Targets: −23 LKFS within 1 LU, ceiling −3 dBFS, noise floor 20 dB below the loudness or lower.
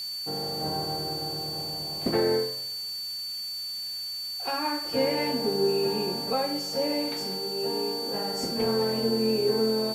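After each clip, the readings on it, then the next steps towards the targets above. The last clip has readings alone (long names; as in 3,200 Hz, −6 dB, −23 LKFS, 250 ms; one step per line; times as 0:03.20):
interfering tone 4,500 Hz; level of the tone −32 dBFS; background noise floor −35 dBFS; target noise floor −48 dBFS; integrated loudness −28.0 LKFS; sample peak −14.0 dBFS; target loudness −23.0 LKFS
→ notch filter 4,500 Hz, Q 30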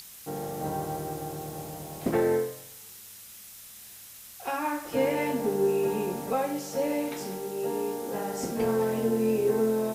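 interfering tone none found; background noise floor −47 dBFS; target noise floor −50 dBFS
→ broadband denoise 6 dB, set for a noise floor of −47 dBFS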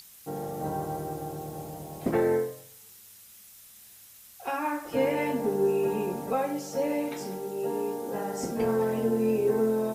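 background noise floor −52 dBFS; integrated loudness −29.5 LKFS; sample peak −15.0 dBFS; target loudness −23.0 LKFS
→ level +6.5 dB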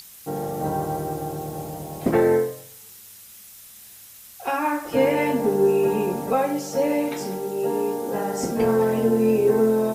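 integrated loudness −23.0 LKFS; sample peak −8.5 dBFS; background noise floor −46 dBFS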